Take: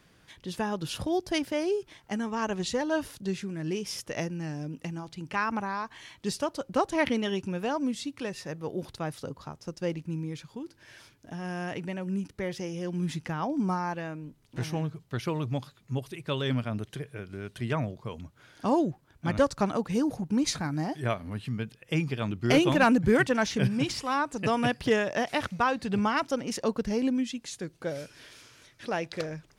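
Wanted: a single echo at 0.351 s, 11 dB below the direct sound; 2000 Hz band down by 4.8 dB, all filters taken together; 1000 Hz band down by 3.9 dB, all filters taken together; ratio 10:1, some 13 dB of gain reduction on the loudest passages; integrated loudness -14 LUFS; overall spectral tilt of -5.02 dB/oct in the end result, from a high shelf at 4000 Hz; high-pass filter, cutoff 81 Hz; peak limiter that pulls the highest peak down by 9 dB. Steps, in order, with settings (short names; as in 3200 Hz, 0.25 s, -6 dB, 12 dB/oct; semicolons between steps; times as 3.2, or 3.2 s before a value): HPF 81 Hz; bell 1000 Hz -4 dB; bell 2000 Hz -6.5 dB; high shelf 4000 Hz +7 dB; compressor 10:1, threshold -32 dBFS; limiter -28.5 dBFS; echo 0.351 s -11 dB; gain +24.5 dB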